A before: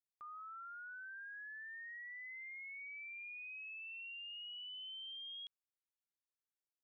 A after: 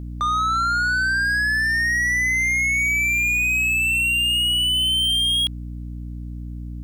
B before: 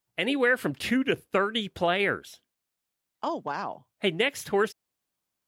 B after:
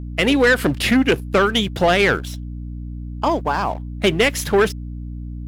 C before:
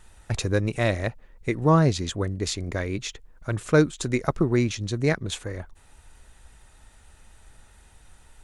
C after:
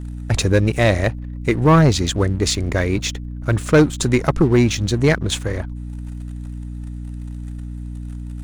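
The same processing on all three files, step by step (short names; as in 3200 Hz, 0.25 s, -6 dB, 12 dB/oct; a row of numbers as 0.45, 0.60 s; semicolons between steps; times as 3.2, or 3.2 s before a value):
sample leveller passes 2; hum 60 Hz, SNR 10 dB; match loudness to -18 LUFS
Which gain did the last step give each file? +27.0, +4.5, +1.5 dB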